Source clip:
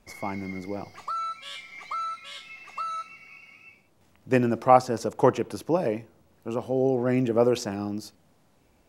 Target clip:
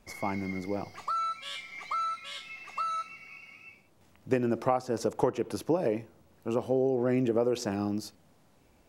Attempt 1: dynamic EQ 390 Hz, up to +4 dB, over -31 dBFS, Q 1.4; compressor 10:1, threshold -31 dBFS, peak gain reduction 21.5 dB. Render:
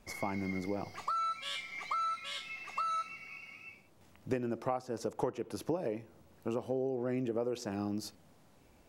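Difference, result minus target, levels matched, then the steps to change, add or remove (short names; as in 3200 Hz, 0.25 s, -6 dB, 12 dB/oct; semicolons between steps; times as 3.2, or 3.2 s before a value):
compressor: peak gain reduction +7.5 dB
change: compressor 10:1, threshold -22.5 dBFS, peak gain reduction 14 dB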